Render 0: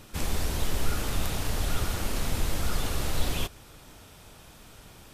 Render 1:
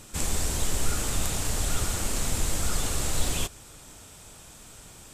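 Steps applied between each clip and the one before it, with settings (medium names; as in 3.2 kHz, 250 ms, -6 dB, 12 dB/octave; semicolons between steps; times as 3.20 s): peaking EQ 7.7 kHz +12 dB 0.68 oct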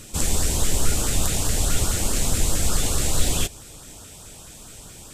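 LFO notch saw up 4.7 Hz 760–2500 Hz; trim +6 dB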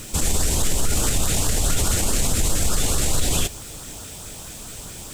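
peak limiter -16 dBFS, peak gain reduction 10 dB; bit crusher 8-bit; trim +5.5 dB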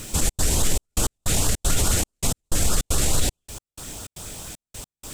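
trance gate "xxx.xxxx..x.." 155 bpm -60 dB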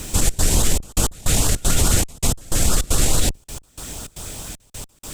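octave divider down 2 oct, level 0 dB; pre-echo 143 ms -23 dB; trim +3 dB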